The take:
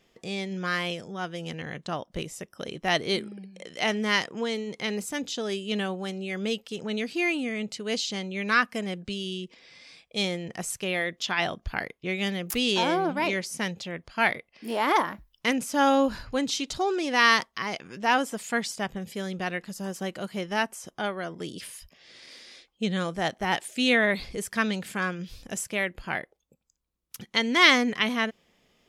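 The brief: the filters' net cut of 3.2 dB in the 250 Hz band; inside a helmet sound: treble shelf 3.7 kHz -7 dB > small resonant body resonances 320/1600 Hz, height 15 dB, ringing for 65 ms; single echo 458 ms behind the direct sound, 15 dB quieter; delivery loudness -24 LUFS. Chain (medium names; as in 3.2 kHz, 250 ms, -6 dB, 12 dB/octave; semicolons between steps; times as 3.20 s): peaking EQ 250 Hz -4 dB; treble shelf 3.7 kHz -7 dB; delay 458 ms -15 dB; small resonant body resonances 320/1600 Hz, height 15 dB, ringing for 65 ms; trim +2 dB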